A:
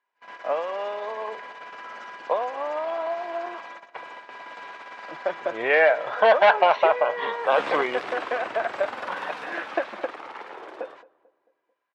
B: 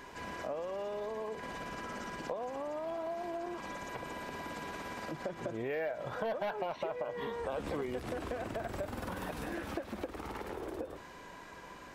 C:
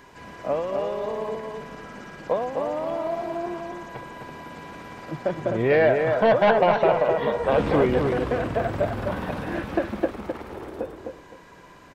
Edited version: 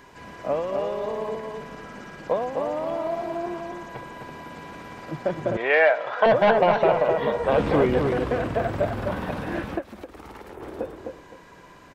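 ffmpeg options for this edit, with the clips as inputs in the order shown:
ffmpeg -i take0.wav -i take1.wav -i take2.wav -filter_complex "[2:a]asplit=3[link_01][link_02][link_03];[link_01]atrim=end=5.572[link_04];[0:a]atrim=start=5.568:end=6.262[link_05];[link_02]atrim=start=6.258:end=9.83[link_06];[1:a]atrim=start=9.73:end=10.64[link_07];[link_03]atrim=start=10.54[link_08];[link_04][link_05]acrossfade=duration=0.004:curve1=hsin:curve2=hsin[link_09];[link_09][link_06]acrossfade=duration=0.004:curve1=hsin:curve2=hsin[link_10];[link_10][link_07]acrossfade=duration=0.1:curve1=tri:curve2=tri[link_11];[link_11][link_08]acrossfade=duration=0.1:curve1=tri:curve2=tri" out.wav

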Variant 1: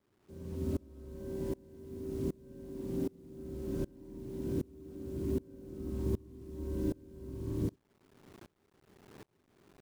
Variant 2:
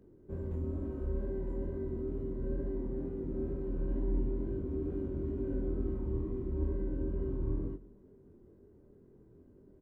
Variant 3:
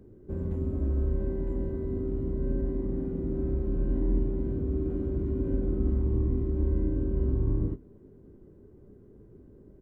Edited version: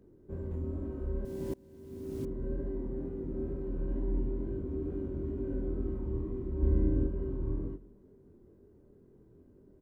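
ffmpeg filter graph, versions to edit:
ffmpeg -i take0.wav -i take1.wav -i take2.wav -filter_complex "[1:a]asplit=3[link_01][link_02][link_03];[link_01]atrim=end=1.252[link_04];[0:a]atrim=start=1.248:end=2.252[link_05];[link_02]atrim=start=2.248:end=6.632[link_06];[2:a]atrim=start=6.628:end=7.072[link_07];[link_03]atrim=start=7.068[link_08];[link_04][link_05]acrossfade=duration=0.004:curve1=hsin:curve2=hsin[link_09];[link_09][link_06]acrossfade=duration=0.004:curve1=hsin:curve2=hsin[link_10];[link_10][link_07]acrossfade=duration=0.004:curve1=hsin:curve2=hsin[link_11];[link_11][link_08]acrossfade=duration=0.004:curve1=hsin:curve2=hsin" out.wav

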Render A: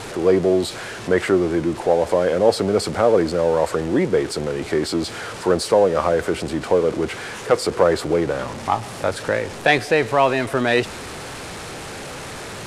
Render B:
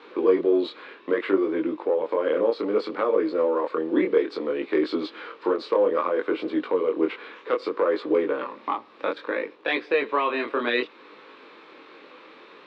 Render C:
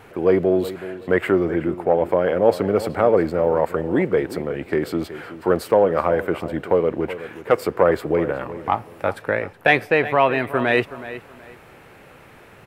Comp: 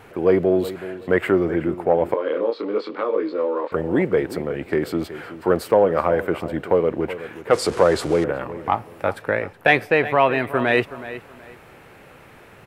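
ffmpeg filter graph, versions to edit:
ffmpeg -i take0.wav -i take1.wav -i take2.wav -filter_complex "[2:a]asplit=3[link_01][link_02][link_03];[link_01]atrim=end=2.142[link_04];[1:a]atrim=start=2.138:end=3.722[link_05];[link_02]atrim=start=3.718:end=7.532[link_06];[0:a]atrim=start=7.528:end=8.242[link_07];[link_03]atrim=start=8.238[link_08];[link_04][link_05]acrossfade=duration=0.004:curve1=hsin:curve2=hsin[link_09];[link_09][link_06]acrossfade=duration=0.004:curve1=hsin:curve2=hsin[link_10];[link_10][link_07]acrossfade=duration=0.004:curve1=hsin:curve2=hsin[link_11];[link_11][link_08]acrossfade=duration=0.004:curve1=hsin:curve2=hsin" out.wav

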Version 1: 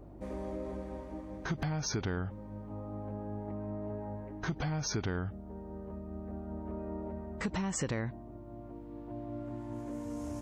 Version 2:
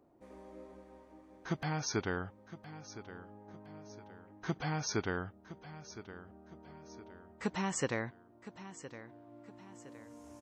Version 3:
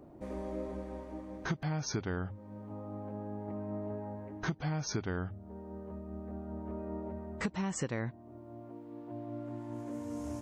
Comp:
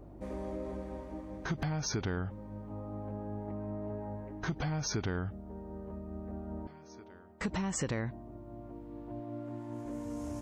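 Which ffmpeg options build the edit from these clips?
ffmpeg -i take0.wav -i take1.wav -i take2.wav -filter_complex "[0:a]asplit=3[link_01][link_02][link_03];[link_01]atrim=end=6.672[link_04];[1:a]atrim=start=6.668:end=7.412[link_05];[link_02]atrim=start=7.408:end=9.202[link_06];[2:a]atrim=start=9.198:end=9.852[link_07];[link_03]atrim=start=9.848[link_08];[link_04][link_05]acrossfade=duration=0.004:curve1=hsin:curve2=hsin[link_09];[link_09][link_06]acrossfade=duration=0.004:curve1=hsin:curve2=hsin[link_10];[link_10][link_07]acrossfade=duration=0.004:curve1=hsin:curve2=hsin[link_11];[link_11][link_08]acrossfade=duration=0.004:curve1=hsin:curve2=hsin" out.wav

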